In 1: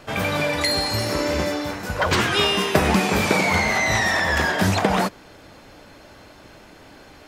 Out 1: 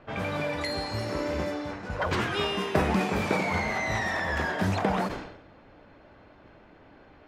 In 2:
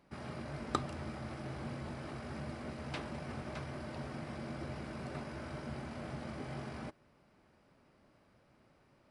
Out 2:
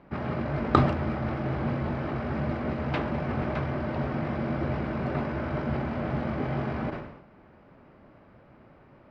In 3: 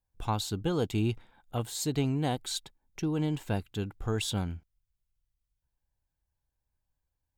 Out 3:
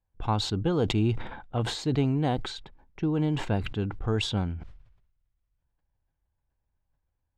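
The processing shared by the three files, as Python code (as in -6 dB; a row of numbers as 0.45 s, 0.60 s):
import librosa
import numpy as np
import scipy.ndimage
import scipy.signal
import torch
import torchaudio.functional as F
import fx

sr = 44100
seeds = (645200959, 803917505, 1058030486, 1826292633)

y = fx.high_shelf(x, sr, hz=3300.0, db=-10.5)
y = fx.env_lowpass(y, sr, base_hz=2900.0, full_db=-19.0)
y = fx.sustainer(y, sr, db_per_s=66.0)
y = y * 10.0 ** (-30 / 20.0) / np.sqrt(np.mean(np.square(y)))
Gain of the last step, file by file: -7.0 dB, +13.5 dB, +3.5 dB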